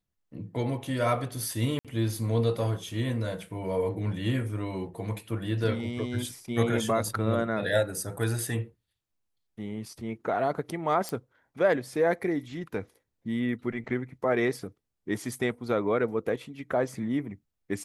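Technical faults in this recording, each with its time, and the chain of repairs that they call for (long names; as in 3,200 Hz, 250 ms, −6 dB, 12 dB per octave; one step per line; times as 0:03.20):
0:01.79–0:01.85: drop-out 57 ms
0:11.09: click −17 dBFS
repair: click removal
repair the gap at 0:01.79, 57 ms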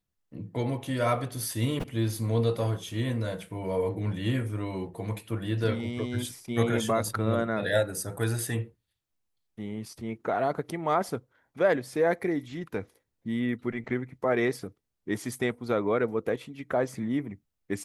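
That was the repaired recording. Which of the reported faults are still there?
none of them is left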